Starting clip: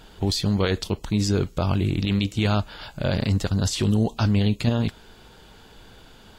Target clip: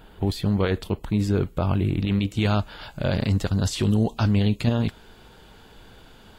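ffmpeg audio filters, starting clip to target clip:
-af "asetnsamples=n=441:p=0,asendcmd='2.31 equalizer g -4',equalizer=f=5.8k:t=o:w=1.2:g=-14"

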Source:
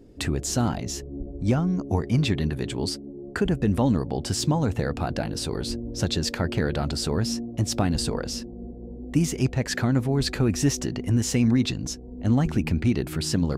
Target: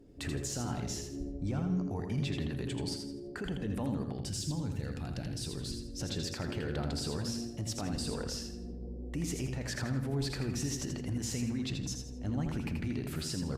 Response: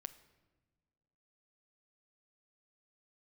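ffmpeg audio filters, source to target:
-filter_complex "[0:a]asettb=1/sr,asplit=3[a][b][c];[a]atrim=end=4.124[d];[b]atrim=start=4.12:end=6.01,asetpts=PTS-STARTPTS,afade=t=in:d=0.004:c=qsin,afade=t=out:st=1.886:d=0.004:c=qsin,equalizer=f=810:t=o:w=2.6:g=-11.5[e];[c]atrim=start=6.006[f];[d][e]acrossfade=d=0.004:c1=hsin:c2=qsin[g];[g][f]acrossfade=d=0.004:c1=qsin:c2=hsin,alimiter=limit=-20.5dB:level=0:latency=1:release=63,aecho=1:1:82|164|246|328:0.531|0.186|0.065|0.0228[h];[1:a]atrim=start_sample=2205[i];[h][i]afir=irnorm=-1:irlink=0,volume=-3dB" -ar 48000 -c:a libopus -b:a 48k

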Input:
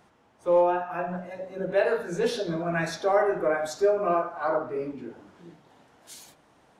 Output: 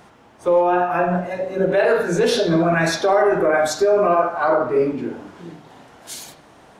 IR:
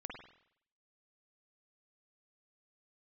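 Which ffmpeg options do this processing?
-filter_complex "[0:a]alimiter=limit=-21dB:level=0:latency=1:release=26,asplit=2[a][b];[1:a]atrim=start_sample=2205,asetrate=61740,aresample=44100[c];[b][c]afir=irnorm=-1:irlink=0,volume=0.5dB[d];[a][d]amix=inputs=2:normalize=0,volume=9dB"

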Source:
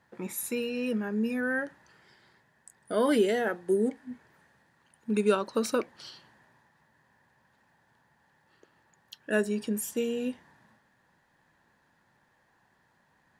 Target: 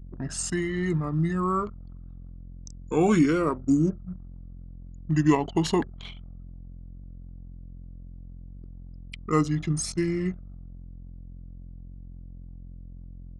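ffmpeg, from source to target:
-af "aeval=exprs='val(0)+0.00631*(sin(2*PI*60*n/s)+sin(2*PI*2*60*n/s)/2+sin(2*PI*3*60*n/s)/3+sin(2*PI*4*60*n/s)/4+sin(2*PI*5*60*n/s)/5)':c=same,asetrate=32097,aresample=44100,atempo=1.37395,anlmdn=0.0398,volume=4dB"

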